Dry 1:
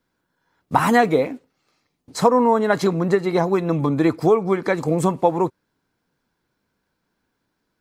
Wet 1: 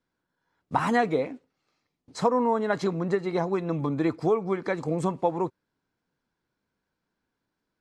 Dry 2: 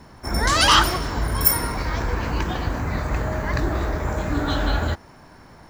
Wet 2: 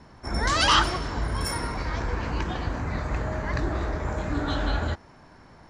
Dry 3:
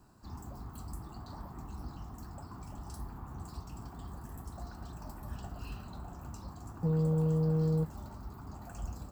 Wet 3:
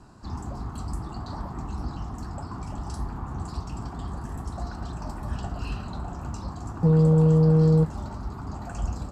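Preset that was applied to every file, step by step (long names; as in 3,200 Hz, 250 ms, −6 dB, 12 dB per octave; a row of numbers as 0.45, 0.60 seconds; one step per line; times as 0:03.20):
Bessel low-pass filter 7,100 Hz, order 4
loudness normalisation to −27 LKFS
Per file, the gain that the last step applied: −7.5, −4.0, +11.0 decibels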